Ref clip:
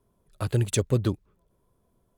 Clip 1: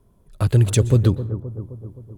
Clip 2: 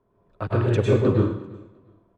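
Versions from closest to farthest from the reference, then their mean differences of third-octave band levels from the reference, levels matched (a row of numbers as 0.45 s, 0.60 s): 1, 2; 4.0 dB, 9.5 dB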